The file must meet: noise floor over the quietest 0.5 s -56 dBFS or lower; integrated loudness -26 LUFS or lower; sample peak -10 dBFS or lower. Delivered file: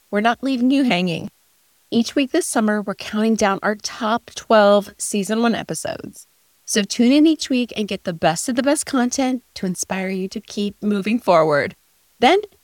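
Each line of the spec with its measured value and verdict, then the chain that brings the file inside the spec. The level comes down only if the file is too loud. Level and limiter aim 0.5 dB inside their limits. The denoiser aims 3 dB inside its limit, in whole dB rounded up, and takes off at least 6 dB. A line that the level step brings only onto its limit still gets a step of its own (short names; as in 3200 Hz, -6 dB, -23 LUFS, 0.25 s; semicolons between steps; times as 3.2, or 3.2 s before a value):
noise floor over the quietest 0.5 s -59 dBFS: OK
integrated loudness -19.0 LUFS: fail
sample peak -2.5 dBFS: fail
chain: gain -7.5 dB; limiter -10.5 dBFS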